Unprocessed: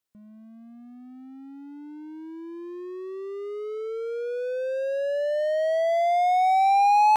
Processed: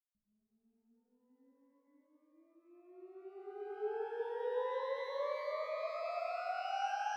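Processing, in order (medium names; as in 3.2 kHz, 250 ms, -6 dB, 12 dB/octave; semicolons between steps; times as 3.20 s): compression 10:1, threshold -33 dBFS, peak gain reduction 17 dB; gate -32 dBFS, range -55 dB; tilt EQ -5 dB/octave; peak limiter -53.5 dBFS, peak gain reduction 10.5 dB; pitch-shifted reverb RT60 3.2 s, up +12 st, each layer -8 dB, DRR -11.5 dB; trim +5 dB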